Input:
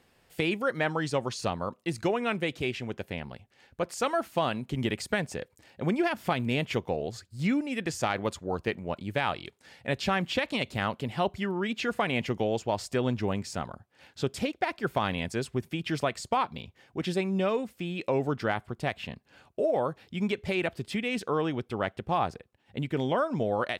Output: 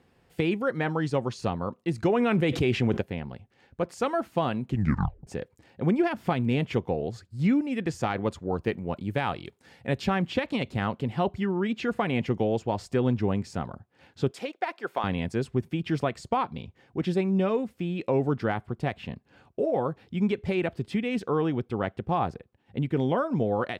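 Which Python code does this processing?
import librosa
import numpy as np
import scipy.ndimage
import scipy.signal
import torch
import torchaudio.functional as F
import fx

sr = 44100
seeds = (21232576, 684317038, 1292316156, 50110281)

y = fx.env_flatten(x, sr, amount_pct=70, at=(2.03, 3.01))
y = fx.high_shelf(y, sr, hz=8900.0, db=9.0, at=(8.61, 10.06))
y = fx.highpass(y, sr, hz=510.0, slope=12, at=(14.31, 15.04))
y = fx.edit(y, sr, fx.tape_stop(start_s=4.69, length_s=0.58), tone=tone)
y = fx.highpass(y, sr, hz=120.0, slope=6)
y = fx.tilt_eq(y, sr, slope=-2.5)
y = fx.notch(y, sr, hz=610.0, q=12.0)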